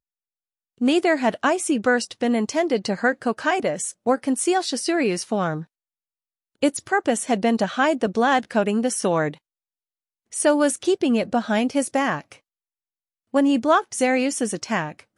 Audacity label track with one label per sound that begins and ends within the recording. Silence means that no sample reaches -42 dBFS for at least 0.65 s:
0.810000	5.640000	sound
6.620000	9.360000	sound
10.320000	12.360000	sound